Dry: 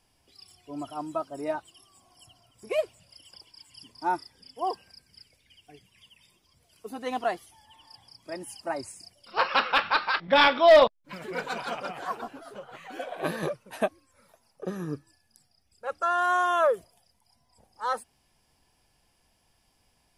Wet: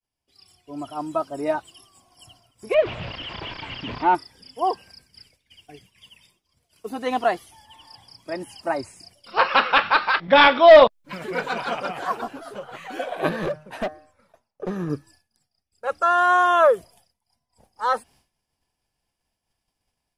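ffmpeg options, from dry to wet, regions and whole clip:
-filter_complex "[0:a]asettb=1/sr,asplit=3[a][b][c];[a]atrim=end=2.744[d];[b]atrim=start=2.74:end=4.15,asetpts=PTS-STARTPTS,afade=t=in:d=0.004:c=qsin,afade=t=out:st=1.406:d=0.004:c=qsin,aeval=exprs='val(0)+0.5*0.0282*sgn(val(0))':c=same,lowpass=f=3.1k:w=0.5412,lowpass=f=3.1k:w=1.3066[e];[c]atrim=start=4.146[f];[d][e]acrossfade=d=0.004:c1=hsin:c2=qsin[g];[g][f]acrossfade=d=0.004:c1=qsin:c2=hsin,asettb=1/sr,asplit=3[h][i][j];[h]atrim=end=13.294[k];[i]atrim=start=13.29:end=14.9,asetpts=PTS-STARTPTS,afade=t=in:d=0.004:c=qsin,afade=t=out:st=1.606:d=0.004:c=qsin,lowpass=f=2.6k:p=1,asoftclip=type=hard:threshold=-28.5dB,bandreject=f=153:t=h:w=4,bandreject=f=306:t=h:w=4,bandreject=f=459:t=h:w=4,bandreject=f=612:t=h:w=4,bandreject=f=765:t=h:w=4,bandreject=f=918:t=h:w=4,bandreject=f=1.071k:t=h:w=4,bandreject=f=1.224k:t=h:w=4,bandreject=f=1.377k:t=h:w=4,bandreject=f=1.53k:t=h:w=4,bandreject=f=1.683k:t=h:w=4,bandreject=f=1.836k:t=h:w=4,bandreject=f=1.989k:t=h:w=4[l];[j]atrim=start=14.896[m];[k][l]acrossfade=d=0.004:c1=hsin:c2=qsin[n];[n][m]acrossfade=d=0.004:c1=qsin:c2=hsin,acrossover=split=4400[o][p];[p]acompressor=threshold=-54dB:ratio=4:attack=1:release=60[q];[o][q]amix=inputs=2:normalize=0,agate=range=-33dB:threshold=-56dB:ratio=3:detection=peak,dynaudnorm=f=610:g=3:m=7dB"

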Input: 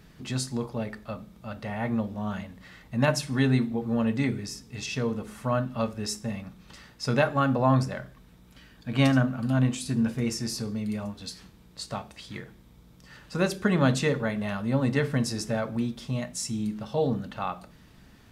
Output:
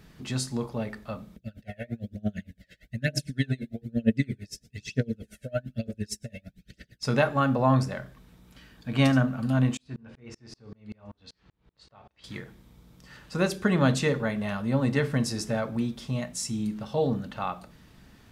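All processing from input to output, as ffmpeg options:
-filter_complex "[0:a]asettb=1/sr,asplit=3[a][b][c];[a]atrim=end=1.364[d];[b]atrim=start=1.36:end=7.03,asetpts=PTS-STARTPTS,afade=t=in:d=0.004:c=qsin,afade=t=out:st=5.666:d=0.004:c=qsin,aphaser=in_gain=1:out_gain=1:delay=1.9:decay=0.59:speed=1.1:type=triangular,asuperstop=centerf=1000:order=8:qfactor=1.2,aeval=exprs='val(0)*pow(10,-30*(0.5-0.5*cos(2*PI*8.8*n/s))/20)':c=same[e];[c]atrim=start=7.026[f];[d][e]acrossfade=d=0.004:c1=hsin:c2=qsin[g];[g][f]acrossfade=d=0.004:c1=qsin:c2=hsin,asettb=1/sr,asplit=3[h][i][j];[h]atrim=end=9.774[k];[i]atrim=start=9.77:end=12.24,asetpts=PTS-STARTPTS,afade=t=in:d=0.004:c=qsin,afade=t=out:st=2.466:d=0.004:c=qsin,lowpass=3.3k,equalizer=f=210:w=1.7:g=-6.5,aeval=exprs='val(0)*pow(10,-34*if(lt(mod(-5.2*n/s,1),2*abs(-5.2)/1000),1-mod(-5.2*n/s,1)/(2*abs(-5.2)/1000),(mod(-5.2*n/s,1)-2*abs(-5.2)/1000)/(1-2*abs(-5.2)/1000))/20)':c=same[l];[j]atrim=start=12.236[m];[k][l]acrossfade=d=0.004:c1=hsin:c2=qsin[n];[n][m]acrossfade=d=0.004:c1=qsin:c2=hsin"

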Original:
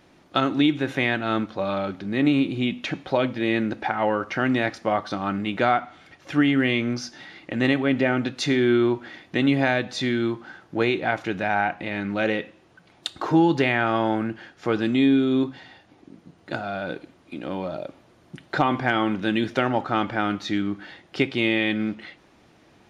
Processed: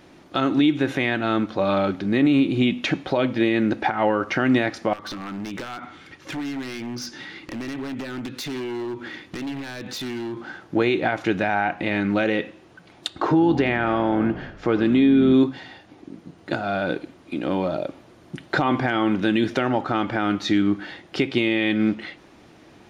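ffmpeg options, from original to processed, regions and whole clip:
-filter_complex "[0:a]asettb=1/sr,asplit=3[a][b][c];[a]atrim=end=4.934[d];[b]atrim=start=4.93:end=10.37,asetpts=PTS-STARTPTS,afade=t=in:d=0.004:c=qsin,afade=t=out:st=5.436:d=0.004:c=qsin,equalizer=f=680:w=4.2:g=-10.5,acompressor=threshold=-32dB:ratio=6:attack=3.2:release=140:knee=1:detection=peak,aeval=exprs='0.0266*(abs(mod(val(0)/0.0266+3,4)-2)-1)':c=same[e];[c]atrim=start=10.366[f];[d][e]acrossfade=d=0.004:c1=hsin:c2=qsin[g];[g][f]acrossfade=d=0.004:c1=qsin:c2=hsin,asettb=1/sr,asplit=3[h][i][j];[h]atrim=end=13.084[k];[i]atrim=start=13.08:end=15.34,asetpts=PTS-STARTPTS,afade=t=in:d=0.004:c=qsin,afade=t=out:st=2.256:d=0.004:c=qsin,aemphasis=mode=reproduction:type=50kf,asplit=7[l][m][n][o][p][q][r];[m]adelay=84,afreqshift=-45,volume=-16dB[s];[n]adelay=168,afreqshift=-90,volume=-20.2dB[t];[o]adelay=252,afreqshift=-135,volume=-24.3dB[u];[p]adelay=336,afreqshift=-180,volume=-28.5dB[v];[q]adelay=420,afreqshift=-225,volume=-32.6dB[w];[r]adelay=504,afreqshift=-270,volume=-36.8dB[x];[l][s][t][u][v][w][x]amix=inputs=7:normalize=0,atrim=end_sample=99666[y];[j]atrim=start=15.336[z];[k][y]acrossfade=d=0.004:c1=hsin:c2=qsin[aa];[aa][z]acrossfade=d=0.004:c1=qsin:c2=hsin,equalizer=f=320:w=1.9:g=3,alimiter=limit=-14.5dB:level=0:latency=1:release=166,volume=5dB"

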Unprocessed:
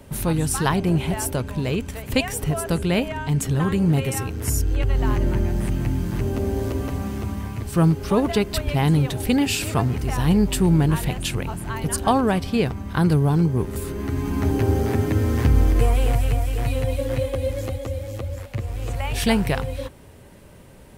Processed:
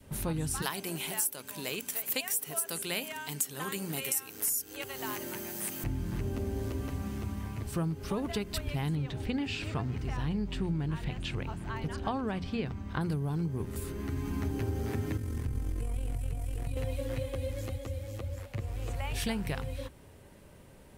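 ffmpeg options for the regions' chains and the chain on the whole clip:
-filter_complex "[0:a]asettb=1/sr,asplit=3[a][b][c];[a]atrim=end=0.624[d];[b]atrim=start=0.62:end=5.84,asetpts=PTS-STARTPTS,afade=t=in:d=0.004:c=qsin,afade=t=out:st=5.216:d=0.004:c=qsin,highpass=160,aemphasis=mode=production:type=riaa[e];[c]atrim=start=5.836[f];[d][e]acrossfade=d=0.004:c1=hsin:c2=qsin[g];[g][f]acrossfade=d=0.004:c1=qsin:c2=hsin,asettb=1/sr,asplit=3[h][i][j];[h]atrim=end=8.954[k];[i]atrim=start=8.95:end=13.01,asetpts=PTS-STARTPTS,afade=t=in:d=0.004:c=qsin,afade=t=out:st=4.056:d=0.004:c=qsin,equalizer=f=12k:t=o:w=0.79:g=-14,acrossover=split=4600[l][m];[m]acompressor=threshold=-48dB:ratio=4:attack=1:release=60[n];[l][n]amix=inputs=2:normalize=0[o];[j]atrim=start=13.006[p];[k][o]acrossfade=d=0.004:c1=hsin:c2=qsin[q];[q][p]acrossfade=d=0.004:c1=qsin:c2=hsin,asettb=1/sr,asplit=3[r][s][t];[r]atrim=end=15.174[u];[s]atrim=start=15.17:end=16.77,asetpts=PTS-STARTPTS,afade=t=in:d=0.004:c=qsin,afade=t=out:st=1.596:d=0.004:c=qsin,equalizer=f=9.5k:w=1.2:g=8,acrossover=split=90|410|880[v][w][x][y];[v]acompressor=threshold=-19dB:ratio=3[z];[w]acompressor=threshold=-25dB:ratio=3[aa];[x]acompressor=threshold=-43dB:ratio=3[ab];[y]acompressor=threshold=-42dB:ratio=3[ac];[z][aa][ab][ac]amix=inputs=4:normalize=0,tremolo=f=44:d=0.621[ad];[t]atrim=start=16.766[ae];[u][ad]acrossfade=d=0.004:c1=hsin:c2=qsin[af];[af][ae]acrossfade=d=0.004:c1=qsin:c2=hsin,bandreject=f=60:t=h:w=6,bandreject=f=120:t=h:w=6,bandreject=f=180:t=h:w=6,bandreject=f=240:t=h:w=6,adynamicequalizer=threshold=0.0158:dfrequency=620:dqfactor=0.77:tfrequency=620:tqfactor=0.77:attack=5:release=100:ratio=0.375:range=2.5:mode=cutabove:tftype=bell,acompressor=threshold=-21dB:ratio=6,volume=-7.5dB"

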